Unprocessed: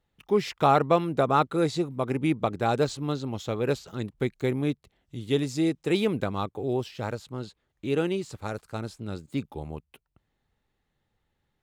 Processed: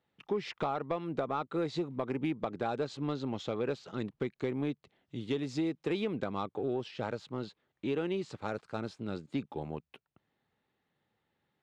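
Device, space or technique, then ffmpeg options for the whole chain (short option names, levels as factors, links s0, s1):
AM radio: -af "highpass=150,lowpass=4200,acompressor=threshold=0.0398:ratio=10,asoftclip=type=tanh:threshold=0.0944"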